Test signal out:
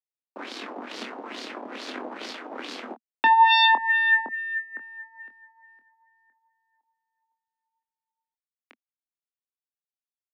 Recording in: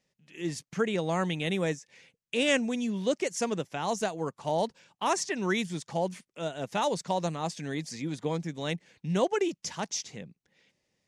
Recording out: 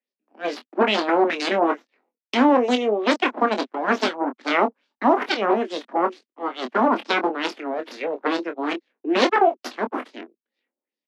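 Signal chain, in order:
harmonic generator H 7 −16 dB, 8 −8 dB, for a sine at −13.5 dBFS
Butterworth high-pass 230 Hz 72 dB per octave
low-shelf EQ 340 Hz +12 dB
auto-filter low-pass sine 2.3 Hz 790–4,700 Hz
double-tracking delay 24 ms −8 dB
level +1 dB

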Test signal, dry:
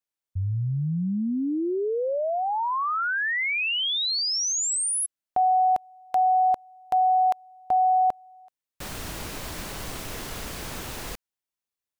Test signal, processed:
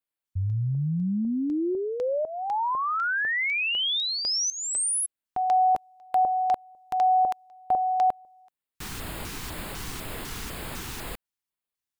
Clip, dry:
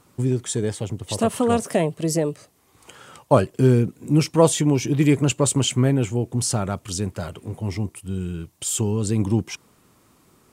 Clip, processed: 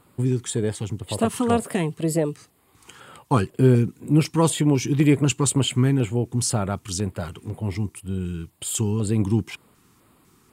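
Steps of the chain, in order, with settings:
auto-filter notch square 2 Hz 590–5,900 Hz

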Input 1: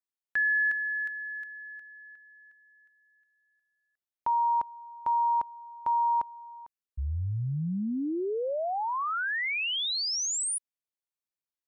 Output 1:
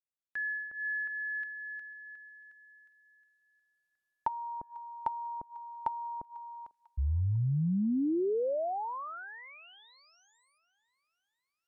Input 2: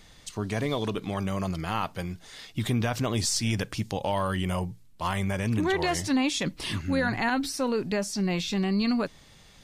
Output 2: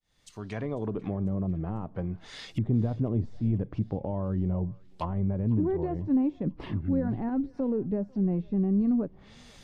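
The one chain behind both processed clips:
fade in at the beginning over 1.25 s
treble cut that deepens with the level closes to 400 Hz, closed at −27 dBFS
feedback echo with a high-pass in the loop 496 ms, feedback 55%, high-pass 1,100 Hz, level −20 dB
level +1.5 dB

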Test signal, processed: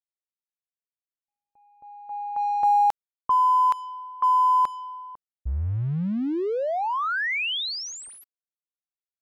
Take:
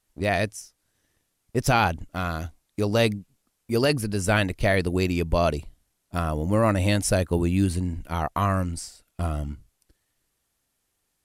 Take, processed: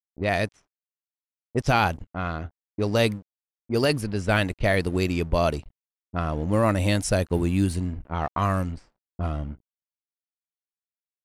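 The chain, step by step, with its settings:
dead-zone distortion −45.5 dBFS
low-pass that shuts in the quiet parts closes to 450 Hz, open at −19 dBFS

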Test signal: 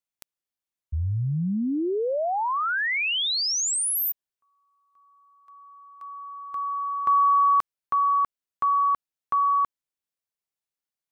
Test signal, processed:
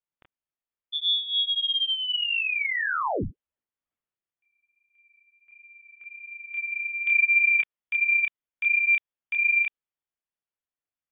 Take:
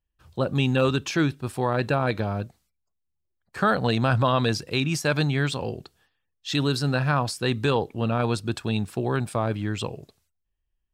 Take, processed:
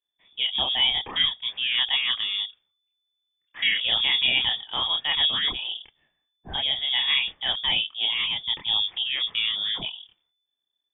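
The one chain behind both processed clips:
multi-voice chorus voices 2, 1.4 Hz, delay 28 ms, depth 3 ms
voice inversion scrambler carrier 3,500 Hz
low-pass that shuts in the quiet parts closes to 2,600 Hz, open at −20 dBFS
level +1.5 dB

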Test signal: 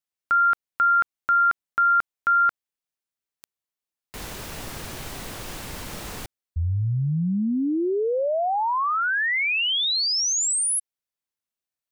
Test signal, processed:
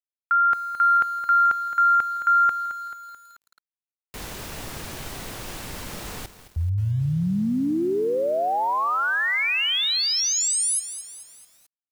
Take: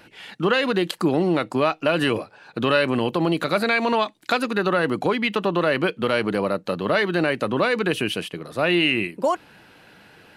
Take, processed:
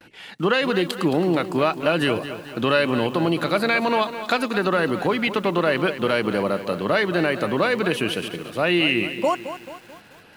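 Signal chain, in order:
noise gate with hold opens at −43 dBFS, closes at −47 dBFS, hold 20 ms, range −34 dB
feedback echo at a low word length 218 ms, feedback 55%, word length 7 bits, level −11.5 dB

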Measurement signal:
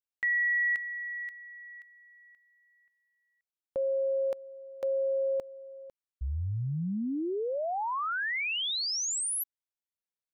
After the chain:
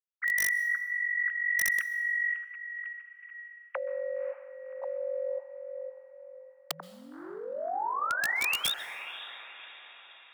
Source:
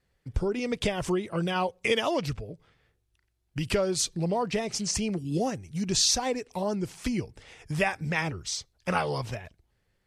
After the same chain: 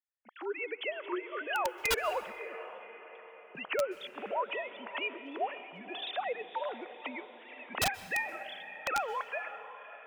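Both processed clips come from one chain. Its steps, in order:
three sine waves on the formant tracks
camcorder AGC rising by 19 dB per second, up to +24 dB
high-pass filter 850 Hz 12 dB per octave
noise gate with hold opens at −56 dBFS
feedback delay with all-pass diffusion 561 ms, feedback 48%, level −12.5 dB
wrap-around overflow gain 22 dB
dense smooth reverb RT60 1.3 s, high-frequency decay 0.85×, pre-delay 115 ms, DRR 17 dB

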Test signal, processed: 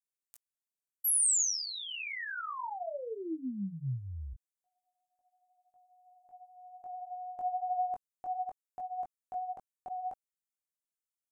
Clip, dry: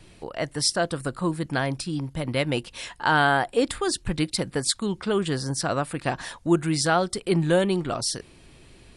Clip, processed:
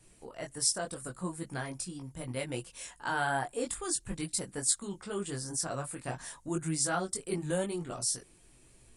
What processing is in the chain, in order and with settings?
multi-voice chorus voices 6, 0.6 Hz, delay 20 ms, depth 4.7 ms
high shelf with overshoot 5,600 Hz +9.5 dB, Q 1.5
level −8.5 dB

